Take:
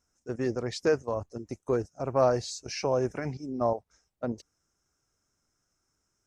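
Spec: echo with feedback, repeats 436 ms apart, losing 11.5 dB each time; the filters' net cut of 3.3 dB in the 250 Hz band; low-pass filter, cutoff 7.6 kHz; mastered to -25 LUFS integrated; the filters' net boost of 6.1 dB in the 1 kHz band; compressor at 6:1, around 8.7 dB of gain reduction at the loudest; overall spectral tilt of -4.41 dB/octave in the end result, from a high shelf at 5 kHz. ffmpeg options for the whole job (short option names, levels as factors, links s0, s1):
-af "lowpass=7600,equalizer=f=250:t=o:g=-5,equalizer=f=1000:t=o:g=8,highshelf=f=5000:g=6,acompressor=threshold=0.0631:ratio=6,aecho=1:1:436|872|1308:0.266|0.0718|0.0194,volume=2.37"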